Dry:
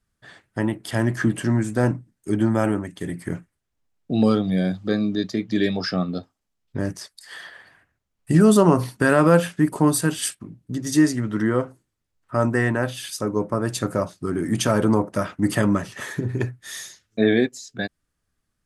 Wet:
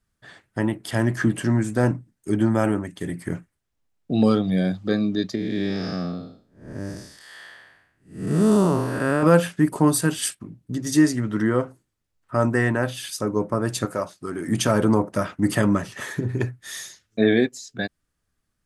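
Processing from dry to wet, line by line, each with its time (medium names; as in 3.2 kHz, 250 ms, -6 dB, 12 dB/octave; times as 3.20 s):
5.35–9.23 s: spectral blur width 259 ms
13.85–14.48 s: bass shelf 310 Hz -11 dB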